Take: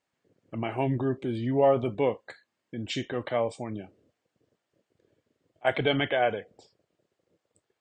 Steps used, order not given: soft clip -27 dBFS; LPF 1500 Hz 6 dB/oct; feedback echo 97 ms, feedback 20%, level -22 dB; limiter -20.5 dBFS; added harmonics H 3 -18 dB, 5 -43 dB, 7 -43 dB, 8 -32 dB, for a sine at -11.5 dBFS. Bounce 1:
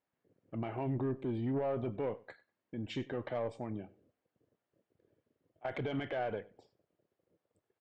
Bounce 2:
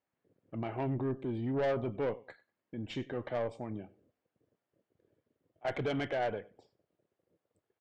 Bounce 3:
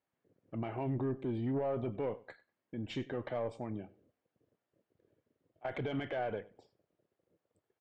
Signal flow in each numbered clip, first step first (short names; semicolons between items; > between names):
limiter > LPF > added harmonics > soft clip > feedback echo; feedback echo > added harmonics > LPF > soft clip > limiter; limiter > added harmonics > feedback echo > soft clip > LPF